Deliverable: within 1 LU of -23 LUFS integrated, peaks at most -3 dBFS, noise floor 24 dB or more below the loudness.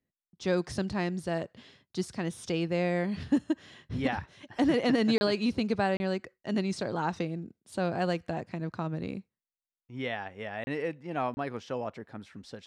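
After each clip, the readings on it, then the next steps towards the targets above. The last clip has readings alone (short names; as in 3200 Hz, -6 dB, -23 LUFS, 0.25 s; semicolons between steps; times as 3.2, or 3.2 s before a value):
dropouts 4; longest dropout 30 ms; loudness -31.5 LUFS; peak -16.5 dBFS; loudness target -23.0 LUFS
-> interpolate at 5.18/5.97/10.64/11.34, 30 ms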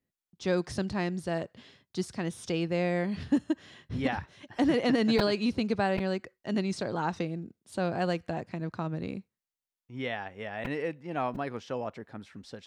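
dropouts 0; loudness -31.5 LUFS; peak -13.5 dBFS; loudness target -23.0 LUFS
-> gain +8.5 dB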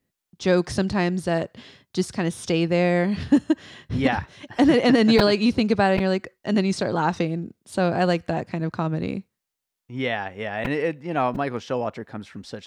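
loudness -23.0 LUFS; peak -5.0 dBFS; noise floor -84 dBFS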